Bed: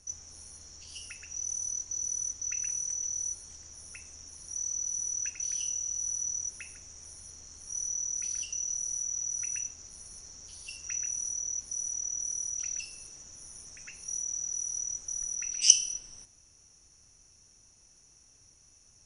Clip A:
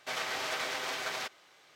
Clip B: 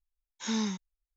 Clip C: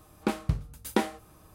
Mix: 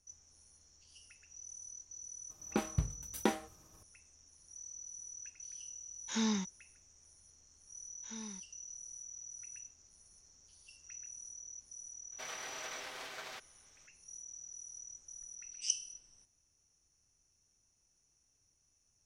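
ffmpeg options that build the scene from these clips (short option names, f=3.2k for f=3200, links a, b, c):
-filter_complex "[2:a]asplit=2[a][b];[0:a]volume=-15dB[c];[3:a]agate=range=-33dB:threshold=-53dB:ratio=3:release=100:detection=peak[d];[a]acontrast=83[e];[d]atrim=end=1.54,asetpts=PTS-STARTPTS,volume=-6dB,afade=t=in:d=0.004:c=hsin,afade=t=out:st=1.536:d=0.004:c=hsin,adelay=2290[f];[e]atrim=end=1.16,asetpts=PTS-STARTPTS,volume=-9.5dB,afade=t=in:d=0.004:c=hsin,afade=t=out:st=1.156:d=0.004:c=hsin,adelay=5680[g];[b]atrim=end=1.16,asetpts=PTS-STARTPTS,volume=-17dB,afade=t=in:d=0.004:c=hsin,afade=t=out:st=1.156:d=0.004:c=hsin,adelay=7630[h];[1:a]atrim=end=1.75,asetpts=PTS-STARTPTS,volume=-10.5dB,afade=t=in:d=0.004:c=hsin,afade=t=out:st=1.746:d=0.004:c=hsin,adelay=12120[i];[c][f][g][h][i]amix=inputs=5:normalize=0"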